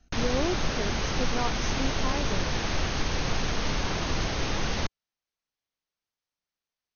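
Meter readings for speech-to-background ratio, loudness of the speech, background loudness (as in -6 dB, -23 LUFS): -5.0 dB, -34.5 LUFS, -29.5 LUFS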